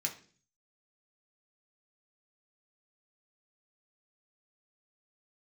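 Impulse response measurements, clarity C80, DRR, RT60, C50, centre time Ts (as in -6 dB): 17.0 dB, 0.5 dB, 0.45 s, 12.5 dB, 12 ms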